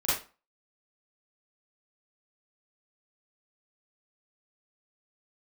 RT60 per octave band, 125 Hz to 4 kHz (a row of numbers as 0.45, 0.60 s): 0.30, 0.35, 0.30, 0.35, 0.30, 0.25 s